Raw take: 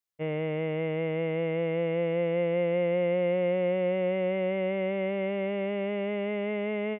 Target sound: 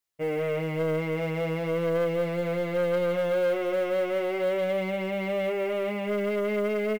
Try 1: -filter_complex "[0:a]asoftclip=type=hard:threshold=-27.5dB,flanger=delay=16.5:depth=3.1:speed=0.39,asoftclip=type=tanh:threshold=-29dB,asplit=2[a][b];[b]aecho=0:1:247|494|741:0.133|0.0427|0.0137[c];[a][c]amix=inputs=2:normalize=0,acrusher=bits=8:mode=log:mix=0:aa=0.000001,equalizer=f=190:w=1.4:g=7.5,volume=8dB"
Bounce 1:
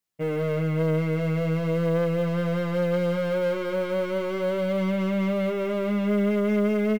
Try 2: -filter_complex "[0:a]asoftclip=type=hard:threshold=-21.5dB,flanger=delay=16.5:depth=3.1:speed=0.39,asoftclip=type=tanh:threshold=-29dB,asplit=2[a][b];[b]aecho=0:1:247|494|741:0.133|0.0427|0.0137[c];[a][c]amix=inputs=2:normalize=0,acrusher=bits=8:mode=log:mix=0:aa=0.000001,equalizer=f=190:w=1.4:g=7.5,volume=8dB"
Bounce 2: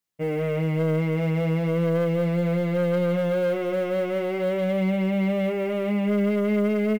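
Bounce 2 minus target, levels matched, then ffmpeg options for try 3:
250 Hz band +5.5 dB
-filter_complex "[0:a]asoftclip=type=hard:threshold=-21.5dB,flanger=delay=16.5:depth=3.1:speed=0.39,asoftclip=type=tanh:threshold=-29dB,asplit=2[a][b];[b]aecho=0:1:247|494|741:0.133|0.0427|0.0137[c];[a][c]amix=inputs=2:normalize=0,acrusher=bits=8:mode=log:mix=0:aa=0.000001,equalizer=f=190:w=1.4:g=-3.5,volume=8dB"

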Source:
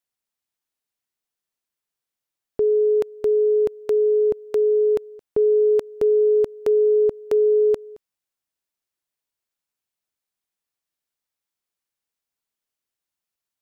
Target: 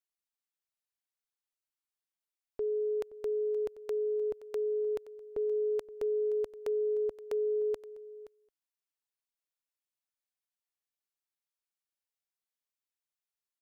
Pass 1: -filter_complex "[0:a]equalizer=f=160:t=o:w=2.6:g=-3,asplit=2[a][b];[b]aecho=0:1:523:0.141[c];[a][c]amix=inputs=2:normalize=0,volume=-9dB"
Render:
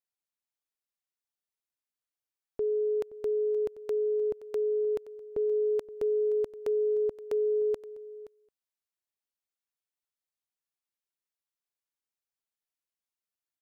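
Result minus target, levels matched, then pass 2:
125 Hz band +3.0 dB
-filter_complex "[0:a]equalizer=f=160:t=o:w=2.6:g=-10.5,asplit=2[a][b];[b]aecho=0:1:523:0.141[c];[a][c]amix=inputs=2:normalize=0,volume=-9dB"

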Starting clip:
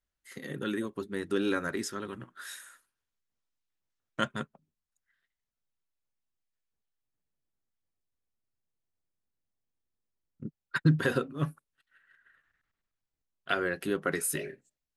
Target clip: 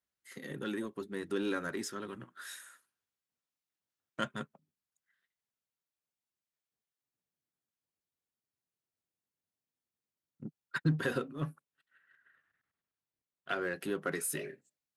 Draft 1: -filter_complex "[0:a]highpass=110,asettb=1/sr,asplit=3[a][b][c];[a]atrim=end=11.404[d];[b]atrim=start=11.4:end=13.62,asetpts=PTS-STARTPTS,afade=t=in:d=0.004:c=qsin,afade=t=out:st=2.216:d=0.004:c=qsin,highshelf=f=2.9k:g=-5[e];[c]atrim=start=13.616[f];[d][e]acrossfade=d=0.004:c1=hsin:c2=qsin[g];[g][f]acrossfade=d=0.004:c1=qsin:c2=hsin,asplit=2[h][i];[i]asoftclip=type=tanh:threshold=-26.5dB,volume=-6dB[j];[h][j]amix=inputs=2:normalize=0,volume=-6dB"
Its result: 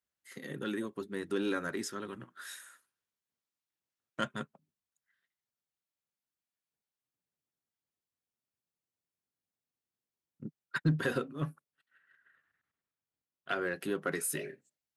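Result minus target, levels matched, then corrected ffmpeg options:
soft clip: distortion -5 dB
-filter_complex "[0:a]highpass=110,asettb=1/sr,asplit=3[a][b][c];[a]atrim=end=11.404[d];[b]atrim=start=11.4:end=13.62,asetpts=PTS-STARTPTS,afade=t=in:d=0.004:c=qsin,afade=t=out:st=2.216:d=0.004:c=qsin,highshelf=f=2.9k:g=-5[e];[c]atrim=start=13.616[f];[d][e]acrossfade=d=0.004:c1=hsin:c2=qsin[g];[g][f]acrossfade=d=0.004:c1=qsin:c2=hsin,asplit=2[h][i];[i]asoftclip=type=tanh:threshold=-35.5dB,volume=-6dB[j];[h][j]amix=inputs=2:normalize=0,volume=-6dB"

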